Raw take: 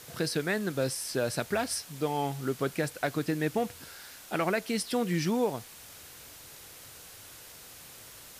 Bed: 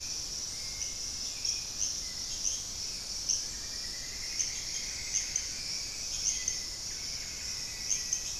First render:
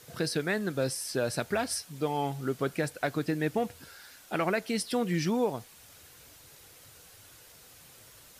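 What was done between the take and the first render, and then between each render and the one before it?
denoiser 6 dB, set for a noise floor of -49 dBFS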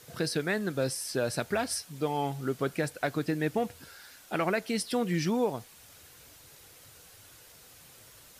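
nothing audible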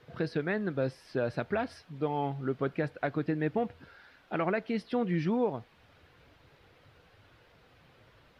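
air absorption 360 m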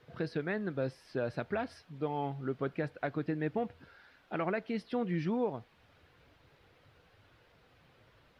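gain -3.5 dB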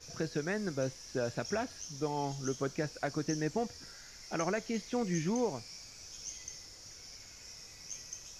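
add bed -13 dB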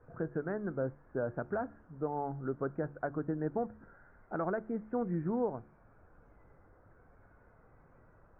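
elliptic low-pass 1500 Hz, stop band 60 dB; de-hum 71.83 Hz, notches 5

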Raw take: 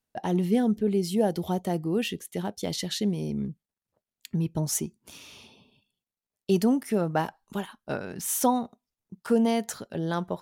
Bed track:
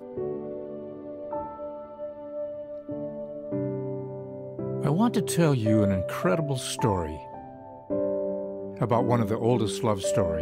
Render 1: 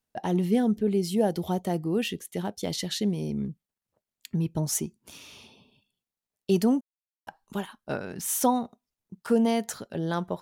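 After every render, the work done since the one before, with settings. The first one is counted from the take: 6.81–7.27 mute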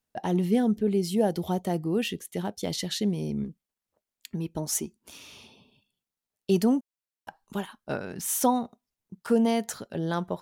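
3.44–5.19 bell 130 Hz -10.5 dB 0.81 oct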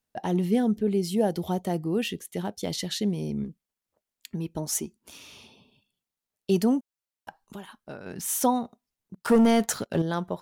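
7.41–8.06 compressor 2.5:1, threshold -39 dBFS; 9.14–10.02 sample leveller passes 2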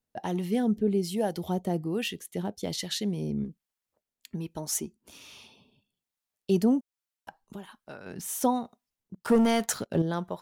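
harmonic tremolo 1.2 Hz, depth 50%, crossover 690 Hz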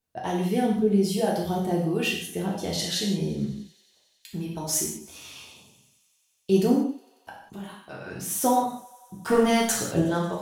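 thinning echo 91 ms, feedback 84%, high-pass 400 Hz, level -24 dB; non-linear reverb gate 0.22 s falling, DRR -4 dB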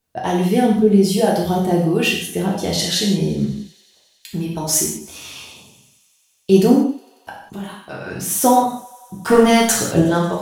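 gain +8.5 dB

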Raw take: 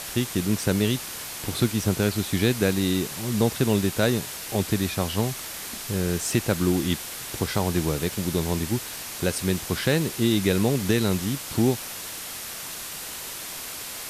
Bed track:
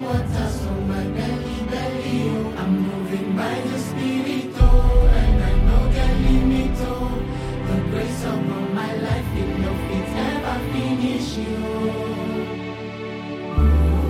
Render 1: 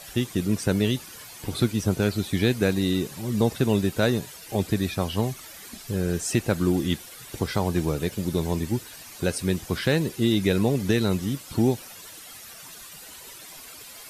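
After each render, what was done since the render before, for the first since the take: denoiser 12 dB, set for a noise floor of -36 dBFS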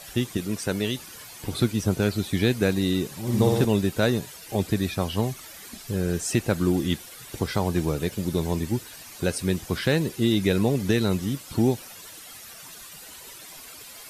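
0.37–0.99 low shelf 300 Hz -7.5 dB; 3.21–3.65 flutter echo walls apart 10 m, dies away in 1.2 s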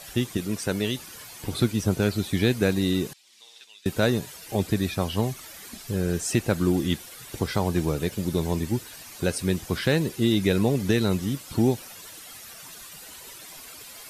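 3.13–3.86 ladder band-pass 4200 Hz, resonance 20%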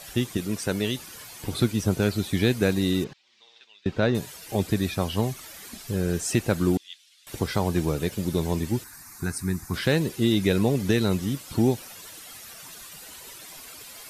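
3.04–4.15 air absorption 180 m; 6.77–7.27 ladder band-pass 4000 Hz, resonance 30%; 8.84–9.74 fixed phaser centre 1300 Hz, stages 4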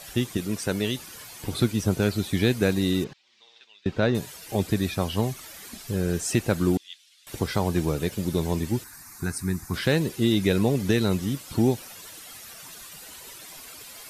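nothing audible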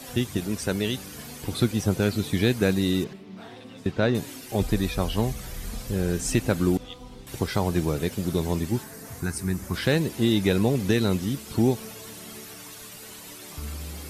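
add bed track -20 dB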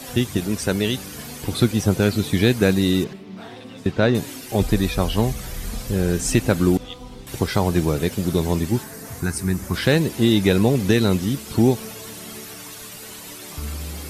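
gain +5 dB

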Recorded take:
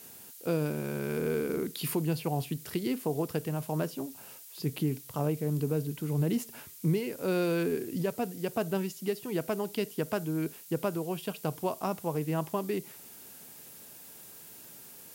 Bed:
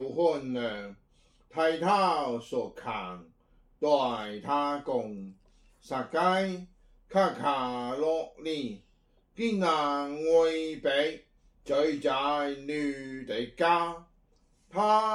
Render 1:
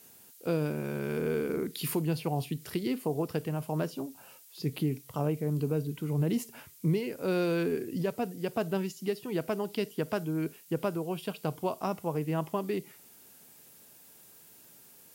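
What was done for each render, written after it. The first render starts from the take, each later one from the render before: noise print and reduce 6 dB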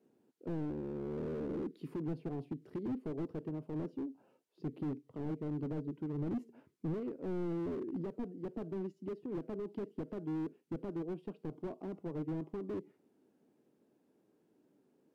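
band-pass 310 Hz, Q 2.2; slew limiter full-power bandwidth 5.4 Hz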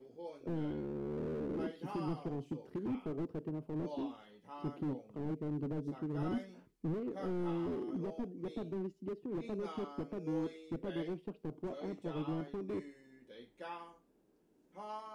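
add bed -21.5 dB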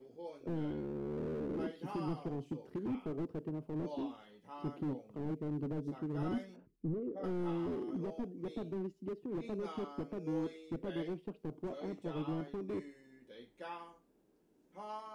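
6.56–7.24 formant sharpening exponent 1.5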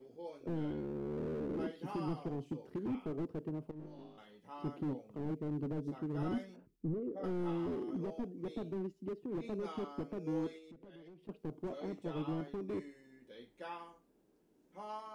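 3.71–4.18 resonator 51 Hz, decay 1.4 s, mix 90%; 10.58–11.29 compressor 8:1, threshold -52 dBFS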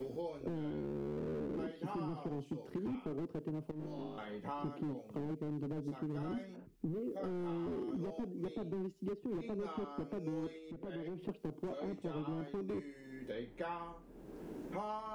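limiter -31.5 dBFS, peak gain reduction 5.5 dB; three-band squash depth 100%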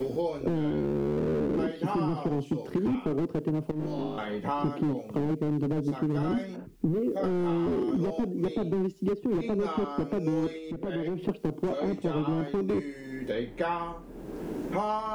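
gain +12 dB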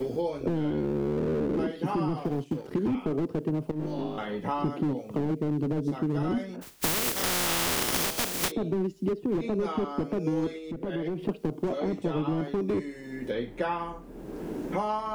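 2.18–2.71 G.711 law mismatch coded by A; 6.61–8.5 spectral contrast lowered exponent 0.22

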